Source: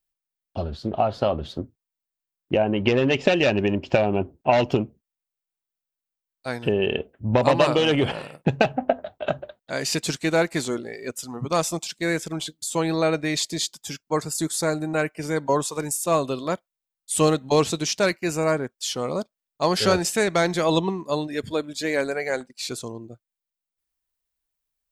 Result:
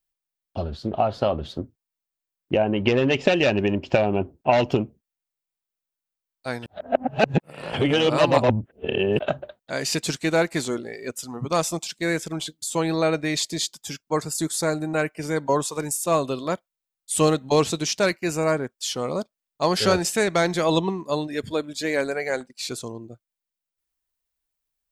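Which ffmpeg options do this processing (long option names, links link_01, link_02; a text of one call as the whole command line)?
ffmpeg -i in.wav -filter_complex "[0:a]asplit=3[link_01][link_02][link_03];[link_01]atrim=end=6.662[link_04];[link_02]atrim=start=6.658:end=9.192,asetpts=PTS-STARTPTS,areverse[link_05];[link_03]atrim=start=9.188[link_06];[link_04][link_05]acrossfade=duration=0.004:curve1=hsin:curve2=hsin[link_07];[link_07][link_06]acrossfade=duration=0.004:curve1=hsin:curve2=hsin" out.wav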